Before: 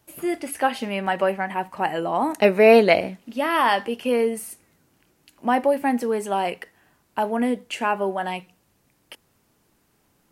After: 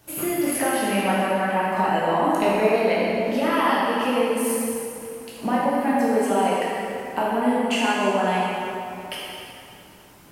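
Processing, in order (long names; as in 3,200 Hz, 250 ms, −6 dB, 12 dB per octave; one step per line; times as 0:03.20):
downward compressor 6 to 1, threshold −33 dBFS, peak gain reduction 22 dB
convolution reverb RT60 2.8 s, pre-delay 8 ms, DRR −7 dB
level +7 dB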